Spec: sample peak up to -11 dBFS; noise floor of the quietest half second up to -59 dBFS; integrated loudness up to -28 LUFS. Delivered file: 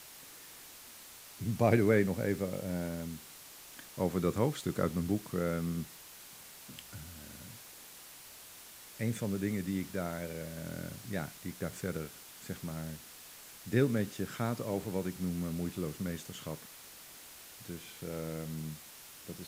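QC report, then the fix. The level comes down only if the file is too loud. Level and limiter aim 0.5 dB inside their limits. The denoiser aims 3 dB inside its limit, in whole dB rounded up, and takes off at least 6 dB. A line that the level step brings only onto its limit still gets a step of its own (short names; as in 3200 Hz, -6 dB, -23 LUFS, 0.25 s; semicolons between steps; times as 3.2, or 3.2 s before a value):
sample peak -13.0 dBFS: OK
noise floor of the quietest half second -52 dBFS: fail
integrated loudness -35.5 LUFS: OK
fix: denoiser 10 dB, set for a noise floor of -52 dBFS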